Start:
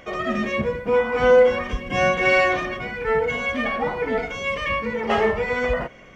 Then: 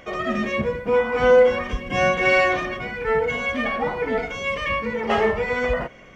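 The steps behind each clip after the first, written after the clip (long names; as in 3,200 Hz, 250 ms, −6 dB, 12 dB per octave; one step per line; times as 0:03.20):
no processing that can be heard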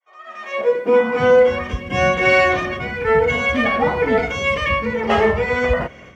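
fade in at the beginning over 0.94 s
automatic gain control
high-pass filter sweep 930 Hz → 73 Hz, 0:00.44–0:01.45
level −3 dB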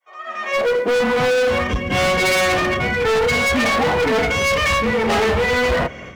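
hard clipping −22 dBFS, distortion −5 dB
level +6.5 dB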